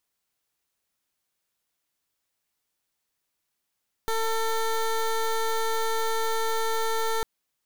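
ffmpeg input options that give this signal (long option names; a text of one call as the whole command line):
ffmpeg -f lavfi -i "aevalsrc='0.0531*(2*lt(mod(448*t,1),0.17)-1)':duration=3.15:sample_rate=44100" out.wav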